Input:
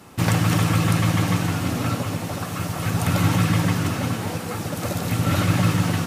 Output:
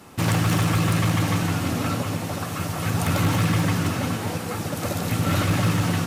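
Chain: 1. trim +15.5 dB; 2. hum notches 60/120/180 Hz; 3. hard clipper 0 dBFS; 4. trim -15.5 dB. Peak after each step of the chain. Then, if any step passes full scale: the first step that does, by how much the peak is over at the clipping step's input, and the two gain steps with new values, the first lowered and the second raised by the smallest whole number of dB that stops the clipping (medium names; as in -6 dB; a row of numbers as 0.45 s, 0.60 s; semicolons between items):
+8.5 dBFS, +9.0 dBFS, 0.0 dBFS, -15.5 dBFS; step 1, 9.0 dB; step 1 +6.5 dB, step 4 -6.5 dB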